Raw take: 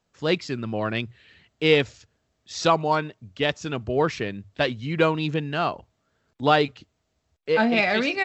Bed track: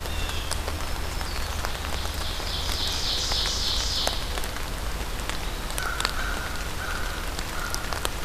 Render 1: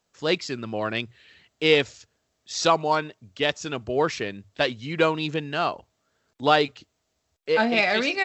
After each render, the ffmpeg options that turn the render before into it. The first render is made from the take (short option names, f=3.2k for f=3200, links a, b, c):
-af "bass=f=250:g=-6,treble=f=4k:g=5"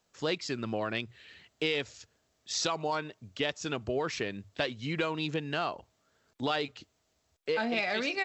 -filter_complex "[0:a]acrossover=split=1500[a][b];[a]alimiter=limit=-16dB:level=0:latency=1:release=31[c];[c][b]amix=inputs=2:normalize=0,acompressor=threshold=-30dB:ratio=3"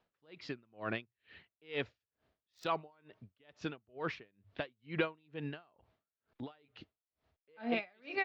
-filter_complex "[0:a]acrossover=split=3700[a][b];[b]acrusher=bits=3:mix=0:aa=0.5[c];[a][c]amix=inputs=2:normalize=0,aeval=exprs='val(0)*pow(10,-37*(0.5-0.5*cos(2*PI*2.2*n/s))/20)':c=same"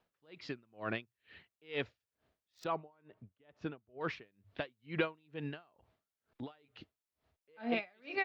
-filter_complex "[0:a]asettb=1/sr,asplit=3[a][b][c];[a]atrim=end=2.644[d];[b]atrim=start=2.64:end=4.01,asetpts=PTS-STARTPTS,afade=t=in:d=0.004:c=qsin,afade=t=out:st=1.366:d=0.004:c=qsin,lowpass=f=1.3k:p=1[e];[c]atrim=start=4.006[f];[d][e]acrossfade=d=0.004:c1=hsin:c2=qsin[g];[g][f]acrossfade=d=0.004:c1=qsin:c2=hsin"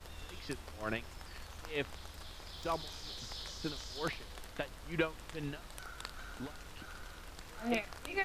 -filter_complex "[1:a]volume=-19.5dB[a];[0:a][a]amix=inputs=2:normalize=0"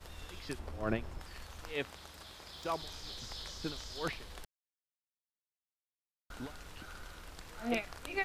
-filter_complex "[0:a]asettb=1/sr,asplit=3[a][b][c];[a]atrim=end=0.594[d];[b]atrim=start=0.59:end=1.21,asetpts=PTS-STARTPTS,afade=t=in:d=0.004:c=qsin,afade=t=out:st=0.616:d=0.004:c=qsin,tiltshelf=f=1.3k:g=6.5[e];[c]atrim=start=1.206[f];[d][e]acrossfade=d=0.004:c1=hsin:c2=qsin[g];[g][f]acrossfade=d=0.004:c1=qsin:c2=hsin,asettb=1/sr,asplit=3[h][i][j];[h]atrim=end=1.734[k];[i]atrim=start=1.73:end=2.82,asetpts=PTS-STARTPTS,afade=t=in:d=0.004:c=qsin,afade=t=out:st=1.086:d=0.004:c=qsin,highpass=f=130:p=1[l];[j]atrim=start=2.816[m];[k][l]acrossfade=d=0.004:c1=hsin:c2=qsin[n];[n][m]acrossfade=d=0.004:c1=qsin:c2=hsin,asplit=3[o][p][q];[o]atrim=end=4.45,asetpts=PTS-STARTPTS,afade=t=out:st=4.446:d=0.004:c=hsin[r];[p]atrim=start=4.45:end=6.3,asetpts=PTS-STARTPTS,volume=0[s];[q]atrim=start=6.3,asetpts=PTS-STARTPTS,afade=t=in:d=0.004:c=hsin[t];[r][s][t]concat=n=3:v=0:a=1"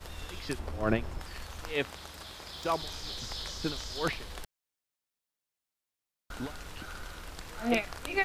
-af "volume=6dB"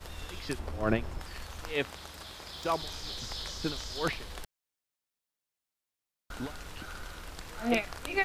-af anull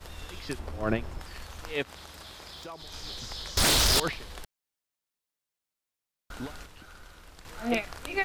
-filter_complex "[0:a]asplit=3[a][b][c];[a]afade=t=out:st=1.82:d=0.02[d];[b]acompressor=threshold=-40dB:ratio=4:attack=3.2:release=140:knee=1:detection=peak,afade=t=in:st=1.82:d=0.02,afade=t=out:st=2.92:d=0.02[e];[c]afade=t=in:st=2.92:d=0.02[f];[d][e][f]amix=inputs=3:normalize=0,asettb=1/sr,asplit=3[g][h][i];[g]atrim=end=3.574[j];[h]atrim=start=3.57:end=4,asetpts=PTS-STARTPTS,afade=t=in:d=0.004:c=qsin,afade=t=out:st=0.426:d=0.004:c=qsin,aeval=exprs='0.112*sin(PI/2*8.91*val(0)/0.112)':c=same[k];[i]atrim=start=3.996[l];[j][k]acrossfade=d=0.004:c1=hsin:c2=qsin[m];[m][l]acrossfade=d=0.004:c1=qsin:c2=hsin,asplit=3[n][o][p];[n]atrim=end=6.662[q];[o]atrim=start=6.658:end=7.452,asetpts=PTS-STARTPTS,volume=-7dB[r];[p]atrim=start=7.448[s];[q][r]acrossfade=d=0.004:c1=hsin:c2=hsin[t];[t][s]acrossfade=d=0.004:c1=hsin:c2=hsin"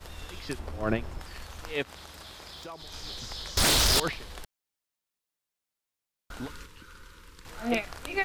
-filter_complex "[0:a]asettb=1/sr,asplit=3[a][b][c];[a]atrim=end=6.484[d];[b]atrim=start=6.48:end=7.46,asetpts=PTS-STARTPTS,afade=t=in:d=0.004:c=qsin,afade=t=out:st=0.976:d=0.004:c=qsin,asuperstop=centerf=700:order=12:qfactor=2.1[e];[c]atrim=start=7.456[f];[d][e]acrossfade=d=0.004:c1=hsin:c2=qsin[g];[g][f]acrossfade=d=0.004:c1=qsin:c2=hsin"